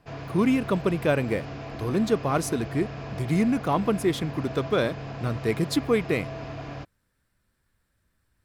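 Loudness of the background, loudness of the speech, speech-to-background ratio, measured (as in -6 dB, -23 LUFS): -37.0 LUFS, -26.5 LUFS, 10.5 dB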